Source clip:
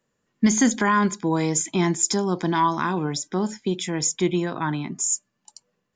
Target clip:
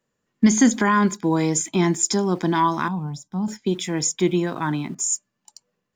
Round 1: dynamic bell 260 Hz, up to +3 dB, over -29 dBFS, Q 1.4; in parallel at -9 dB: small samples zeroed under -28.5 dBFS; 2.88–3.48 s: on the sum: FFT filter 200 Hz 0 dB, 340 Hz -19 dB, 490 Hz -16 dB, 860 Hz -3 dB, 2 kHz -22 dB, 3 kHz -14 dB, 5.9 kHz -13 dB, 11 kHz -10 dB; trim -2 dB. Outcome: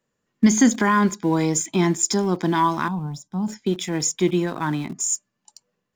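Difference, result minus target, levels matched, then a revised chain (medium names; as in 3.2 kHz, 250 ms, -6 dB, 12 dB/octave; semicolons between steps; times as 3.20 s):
small samples zeroed: distortion +10 dB
dynamic bell 260 Hz, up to +3 dB, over -29 dBFS, Q 1.4; in parallel at -9 dB: small samples zeroed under -36.5 dBFS; 2.88–3.48 s: on the sum: FFT filter 200 Hz 0 dB, 340 Hz -19 dB, 490 Hz -16 dB, 860 Hz -3 dB, 2 kHz -22 dB, 3 kHz -14 dB, 5.9 kHz -13 dB, 11 kHz -10 dB; trim -2 dB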